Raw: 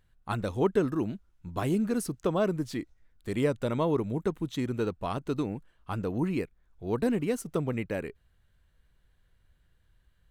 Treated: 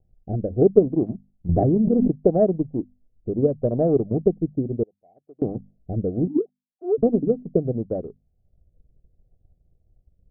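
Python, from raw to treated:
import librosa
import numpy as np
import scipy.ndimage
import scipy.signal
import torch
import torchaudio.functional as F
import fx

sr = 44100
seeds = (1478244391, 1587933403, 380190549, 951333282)

y = fx.sine_speech(x, sr, at=(6.27, 6.98))
y = scipy.signal.sosfilt(scipy.signal.cheby1(8, 1.0, 770.0, 'lowpass', fs=sr, output='sos'), y)
y = fx.hum_notches(y, sr, base_hz=50, count=5)
y = fx.differentiator(y, sr, at=(4.83, 5.42))
y = fx.transient(y, sr, attack_db=5, sustain_db=-6)
y = fx.rotary(y, sr, hz=0.7)
y = fx.env_flatten(y, sr, amount_pct=100, at=(1.49, 2.11))
y = F.gain(torch.from_numpy(y), 8.0).numpy()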